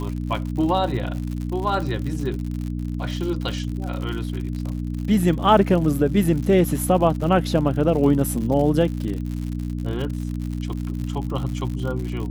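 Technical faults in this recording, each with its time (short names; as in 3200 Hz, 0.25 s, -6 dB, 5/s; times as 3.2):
crackle 100/s -29 dBFS
hum 60 Hz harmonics 5 -27 dBFS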